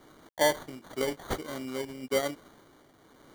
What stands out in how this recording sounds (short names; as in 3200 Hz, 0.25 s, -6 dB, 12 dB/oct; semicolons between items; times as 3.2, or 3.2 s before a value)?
a quantiser's noise floor 10-bit, dither none; tremolo triangle 0.94 Hz, depth 55%; aliases and images of a low sample rate 2600 Hz, jitter 0%